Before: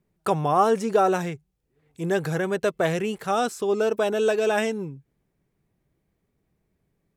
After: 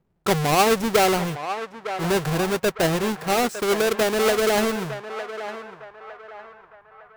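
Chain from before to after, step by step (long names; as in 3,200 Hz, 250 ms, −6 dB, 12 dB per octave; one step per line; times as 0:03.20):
each half-wave held at its own peak
feedback echo with a band-pass in the loop 907 ms, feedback 53%, band-pass 1,200 Hz, level −8 dB
one half of a high-frequency compander decoder only
level −2 dB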